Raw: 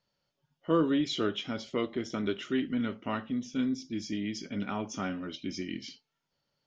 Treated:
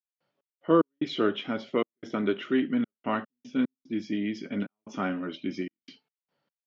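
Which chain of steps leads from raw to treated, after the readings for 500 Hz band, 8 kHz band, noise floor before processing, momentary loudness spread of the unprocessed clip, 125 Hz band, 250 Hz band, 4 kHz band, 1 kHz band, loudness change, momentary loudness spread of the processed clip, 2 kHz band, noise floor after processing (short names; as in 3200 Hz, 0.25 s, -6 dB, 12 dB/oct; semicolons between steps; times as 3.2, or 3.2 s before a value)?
+4.5 dB, n/a, -84 dBFS, 9 LU, 0.0 dB, +2.5 dB, -1.5 dB, +4.5 dB, +3.0 dB, 10 LU, +3.5 dB, under -85 dBFS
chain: step gate ".x.x.xxxx.xxxx" 74 bpm -60 dB; BPF 180–2500 Hz; gain +5.5 dB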